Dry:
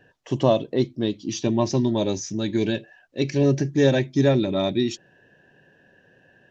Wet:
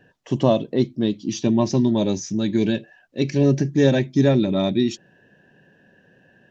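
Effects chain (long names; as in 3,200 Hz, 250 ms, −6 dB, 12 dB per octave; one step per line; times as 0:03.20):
parametric band 200 Hz +6.5 dB 0.81 octaves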